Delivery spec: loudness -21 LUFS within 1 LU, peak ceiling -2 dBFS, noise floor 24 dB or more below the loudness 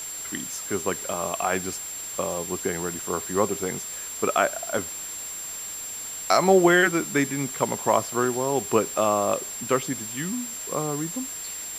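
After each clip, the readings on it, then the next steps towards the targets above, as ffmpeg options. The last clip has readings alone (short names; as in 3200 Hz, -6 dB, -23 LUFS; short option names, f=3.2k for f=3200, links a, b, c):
steady tone 7400 Hz; tone level -33 dBFS; noise floor -35 dBFS; noise floor target -50 dBFS; loudness -25.5 LUFS; peak -4.0 dBFS; loudness target -21.0 LUFS
-> -af "bandreject=f=7.4k:w=30"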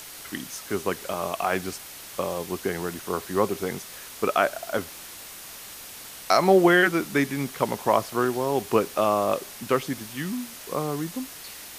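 steady tone none; noise floor -42 dBFS; noise floor target -50 dBFS
-> -af "afftdn=nr=8:nf=-42"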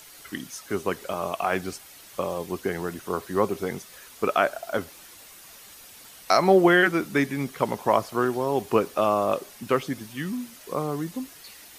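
noise floor -48 dBFS; noise floor target -50 dBFS
-> -af "afftdn=nr=6:nf=-48"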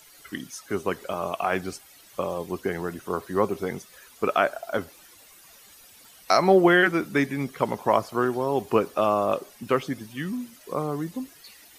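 noise floor -52 dBFS; loudness -25.5 LUFS; peak -4.0 dBFS; loudness target -21.0 LUFS
-> -af "volume=4.5dB,alimiter=limit=-2dB:level=0:latency=1"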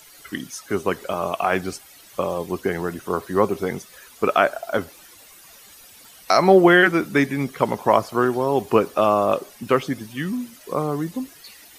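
loudness -21.0 LUFS; peak -2.0 dBFS; noise floor -48 dBFS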